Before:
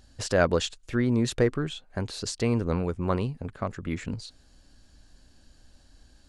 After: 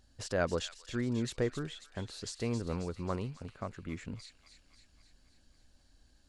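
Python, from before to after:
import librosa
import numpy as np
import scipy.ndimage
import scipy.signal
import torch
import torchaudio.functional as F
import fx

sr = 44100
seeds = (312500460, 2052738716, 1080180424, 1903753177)

y = fx.echo_wet_highpass(x, sr, ms=270, feedback_pct=61, hz=2200.0, wet_db=-8.5)
y = F.gain(torch.from_numpy(y), -9.0).numpy()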